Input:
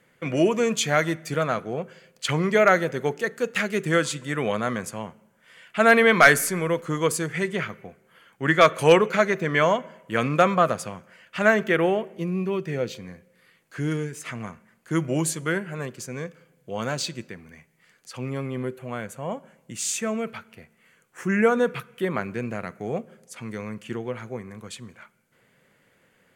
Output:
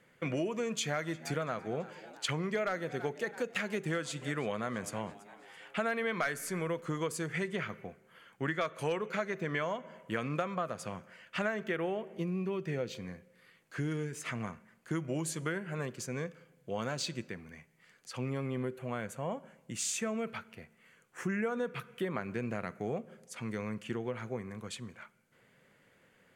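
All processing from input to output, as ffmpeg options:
ffmpeg -i in.wav -filter_complex "[0:a]asettb=1/sr,asplit=3[link_01][link_02][link_03];[link_01]atrim=end=0.804[link_04];[link_02]atrim=start=0.8:end=5.79,asetpts=PTS-STARTPTS,afade=type=in:duration=0.004:curve=qsin,afade=type=out:start_time=4.986:duration=0.004:curve=qsin,asoftclip=type=hard:threshold=-9.5dB,asplit=5[link_05][link_06][link_07][link_08][link_09];[link_06]adelay=333,afreqshift=97,volume=-22dB[link_10];[link_07]adelay=666,afreqshift=194,volume=-27.7dB[link_11];[link_08]adelay=999,afreqshift=291,volume=-33.4dB[link_12];[link_09]adelay=1332,afreqshift=388,volume=-39dB[link_13];[link_05][link_10][link_11][link_12][link_13]amix=inputs=5:normalize=0,atrim=end_sample=220059[link_14];[link_03]atrim=start=5.786[link_15];[link_04][link_14]acrossfade=duration=0.004:curve1=hsin:curve2=qsin[link_16];[link_16][link_15]acrossfade=duration=0.004:curve1=qsin:curve2=hsin,highshelf=frequency=9500:gain=-5.5,acompressor=threshold=-28dB:ratio=6,volume=-3dB" out.wav

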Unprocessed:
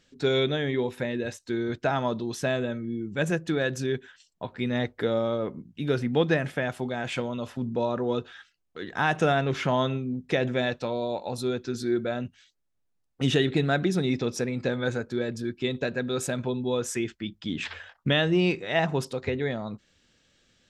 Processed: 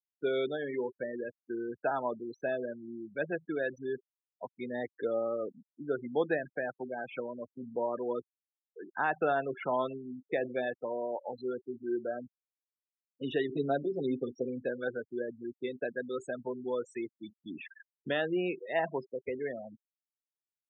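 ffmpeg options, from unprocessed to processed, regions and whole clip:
ffmpeg -i in.wav -filter_complex "[0:a]asettb=1/sr,asplit=3[link_01][link_02][link_03];[link_01]atrim=end=13.484[link_04];[link_02]atrim=start=13.48:end=14.64,asetpts=PTS-STARTPTS,afade=type=in:duration=0.004:curve=qsin,afade=type=out:start_time=1.156:duration=0.004:curve=qsin,lowpass=frequency=5100:width=0.5412,lowpass=frequency=5100:width=1.3066,equalizer=frequency=1800:width_type=o:width=1.1:gain=-11,aecho=1:1:7.5:0.87,atrim=end_sample=51156[link_05];[link_03]atrim=start=14.636[link_06];[link_04][link_05]acrossfade=duration=0.004:curve1=hsin:curve2=qsin[link_07];[link_07][link_06]acrossfade=duration=0.004:curve1=qsin:curve2=hsin,afftfilt=real='re*gte(hypot(re,im),0.0562)':imag='im*gte(hypot(re,im),0.0562)':win_size=1024:overlap=0.75,highpass=frequency=160:poles=1,acrossover=split=280 2200:gain=0.2 1 0.2[link_08][link_09][link_10];[link_08][link_09][link_10]amix=inputs=3:normalize=0,volume=-4dB" out.wav

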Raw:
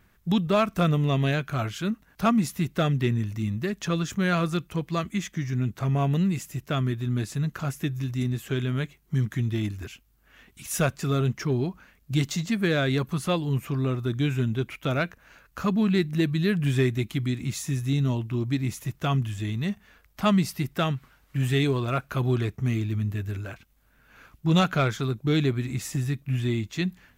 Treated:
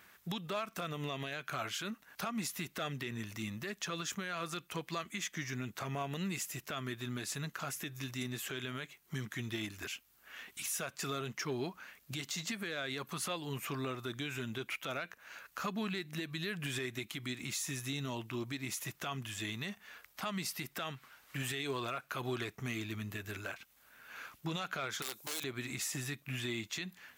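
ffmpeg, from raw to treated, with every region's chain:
ffmpeg -i in.wav -filter_complex "[0:a]asettb=1/sr,asplit=3[link_01][link_02][link_03];[link_01]atrim=end=25.024[link_04];[link_02]atrim=start=25.02:end=25.44,asetpts=PTS-STARTPTS,afade=type=in:duration=0.004:curve=qsin,afade=type=out:start_time=0.416:duration=0.004:curve=qsin,bass=frequency=250:gain=-15,treble=frequency=4000:gain=15,acompressor=threshold=-31dB:ratio=4:attack=3.2:release=140:knee=1:detection=peak,aeval=exprs='(mod(26.6*val(0)+1,2)-1)/26.6':channel_layout=same[link_05];[link_03]atrim=start=25.436[link_06];[link_04][link_05]acrossfade=duration=0.004:curve1=hsin:curve2=qsin[link_07];[link_07][link_06]acrossfade=duration=0.004:curve1=qsin:curve2=hsin,highpass=frequency=990:poles=1,acompressor=threshold=-52dB:ratio=1.5,alimiter=level_in=10dB:limit=-24dB:level=0:latency=1:release=81,volume=-10dB,volume=7dB" out.wav

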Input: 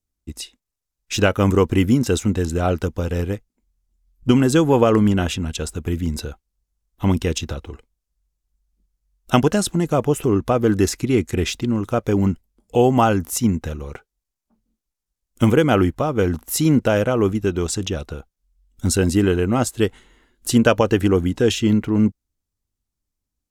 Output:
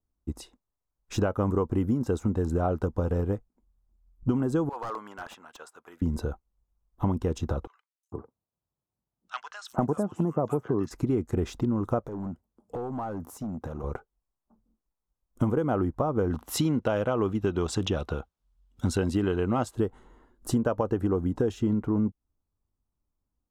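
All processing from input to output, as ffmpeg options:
ffmpeg -i in.wav -filter_complex "[0:a]asettb=1/sr,asplit=3[link_01][link_02][link_03];[link_01]atrim=end=4.694[link_04];[link_02]atrim=start=4.69:end=6.02,asetpts=PTS-STARTPTS,afade=type=in:duration=0.004:curve=qsin,afade=type=out:start_time=1.326:duration=0.004:curve=qsin,highpass=1500,highshelf=frequency=3200:gain=-10,aeval=exprs='0.0447*(abs(mod(val(0)/0.0447+3,4)-2)-1)':channel_layout=same[link_05];[link_03]atrim=start=6.016[link_06];[link_04][link_05]acrossfade=duration=0.004:curve1=hsin:curve2=qsin[link_07];[link_07][link_06]acrossfade=duration=0.004:curve1=qsin:curve2=hsin,asettb=1/sr,asplit=3[link_08][link_09][link_10];[link_08]atrim=end=7.674[link_11];[link_09]atrim=start=7.67:end=10.91,asetpts=PTS-STARTPTS,afade=type=in:duration=0.004:curve=qsin,afade=type=out:start_time=3.236:duration=0.004:curve=qsin,highpass=frequency=100:width=0.5412,highpass=frequency=100:width=1.3066,asoftclip=type=hard:threshold=-5.5dB,acrossover=split=1500|6000[link_12][link_13][link_14];[link_14]adelay=360[link_15];[link_12]adelay=450[link_16];[link_16][link_13][link_15]amix=inputs=3:normalize=0,atrim=end_sample=142884[link_17];[link_10]atrim=start=10.906[link_18];[link_11][link_17]acrossfade=duration=0.004:curve1=hsin:curve2=qsin[link_19];[link_19][link_18]acrossfade=duration=0.004:curve1=qsin:curve2=hsin,asettb=1/sr,asplit=3[link_20][link_21][link_22];[link_20]atrim=end=12.074[link_23];[link_21]atrim=start=12.07:end=13.84,asetpts=PTS-STARTPTS,afade=type=in:duration=0.004:curve=qsin,afade=type=out:start_time=1.766:duration=0.004:curve=qsin,highpass=100,acompressor=threshold=-29dB:ratio=6:attack=3.2:release=140:knee=1:detection=peak,asoftclip=type=hard:threshold=-30dB[link_24];[link_22]atrim=start=13.836[link_25];[link_23][link_24]acrossfade=duration=0.004:curve1=hsin:curve2=qsin[link_26];[link_26][link_25]acrossfade=duration=0.004:curve1=qsin:curve2=hsin,asettb=1/sr,asplit=3[link_27][link_28][link_29];[link_27]atrim=end=16.304[link_30];[link_28]atrim=start=16.3:end=19.75,asetpts=PTS-STARTPTS,afade=type=in:duration=0.004:curve=qsin,afade=type=out:start_time=3.446:duration=0.004:curve=qsin,highpass=50,equalizer=frequency=3100:width_type=o:width=1.6:gain=14.5[link_31];[link_29]atrim=start=19.746[link_32];[link_30][link_31]acrossfade=duration=0.004:curve1=hsin:curve2=qsin[link_33];[link_33][link_32]acrossfade=duration=0.004:curve1=qsin:curve2=hsin,highshelf=frequency=1600:width_type=q:width=1.5:gain=-13,acompressor=threshold=-23dB:ratio=6" out.wav

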